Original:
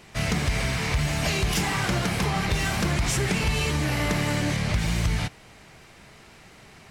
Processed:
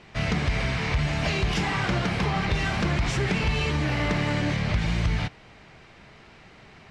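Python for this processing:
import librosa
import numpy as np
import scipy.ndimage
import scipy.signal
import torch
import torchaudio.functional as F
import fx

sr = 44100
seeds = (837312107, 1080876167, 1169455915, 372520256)

y = scipy.signal.sosfilt(scipy.signal.butter(2, 4200.0, 'lowpass', fs=sr, output='sos'), x)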